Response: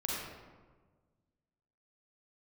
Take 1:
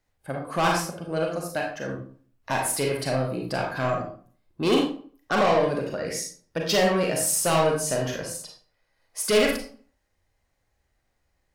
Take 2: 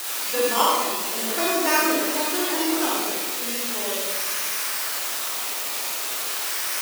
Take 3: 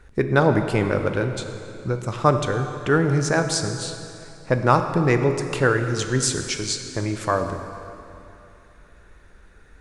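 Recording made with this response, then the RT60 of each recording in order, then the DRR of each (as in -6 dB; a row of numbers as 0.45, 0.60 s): 2; 0.45, 1.4, 2.8 s; -0.5, -4.5, 6.0 dB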